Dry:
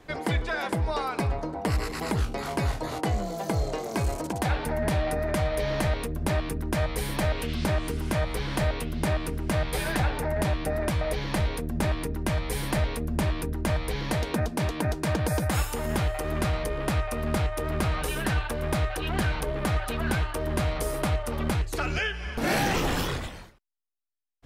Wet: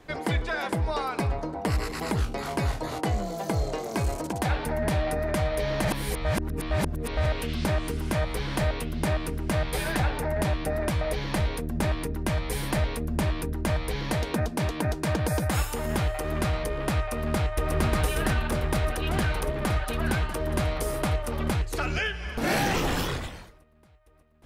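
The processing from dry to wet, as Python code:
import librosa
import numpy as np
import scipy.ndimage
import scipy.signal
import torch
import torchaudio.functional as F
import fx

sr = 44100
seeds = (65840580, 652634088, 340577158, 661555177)

y = fx.echo_throw(x, sr, start_s=16.98, length_s=0.75, ms=590, feedback_pct=70, wet_db=-1.5)
y = fx.edit(y, sr, fx.reverse_span(start_s=5.85, length_s=1.41), tone=tone)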